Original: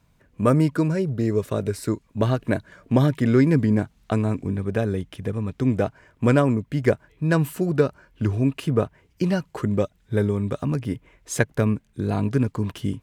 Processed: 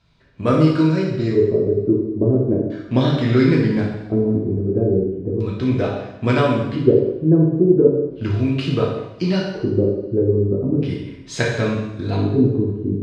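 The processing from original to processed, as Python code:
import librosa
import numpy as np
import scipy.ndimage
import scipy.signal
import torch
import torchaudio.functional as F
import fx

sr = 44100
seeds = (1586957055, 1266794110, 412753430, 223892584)

y = fx.filter_lfo_lowpass(x, sr, shape='square', hz=0.37, low_hz=370.0, high_hz=4300.0, q=2.8)
y = fx.room_flutter(y, sr, wall_m=10.3, rt60_s=0.38)
y = fx.rev_double_slope(y, sr, seeds[0], early_s=0.89, late_s=2.4, knee_db=-24, drr_db=-3.5)
y = y * librosa.db_to_amplitude(-2.0)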